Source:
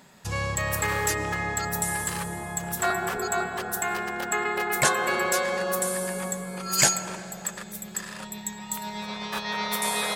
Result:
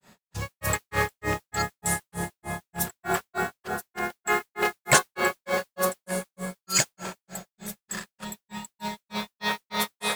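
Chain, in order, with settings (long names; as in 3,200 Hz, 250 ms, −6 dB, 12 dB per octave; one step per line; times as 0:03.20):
automatic gain control gain up to 5.5 dB
granular cloud 190 ms, grains 3.3 per second, pitch spread up and down by 0 semitones
noise that follows the level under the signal 18 dB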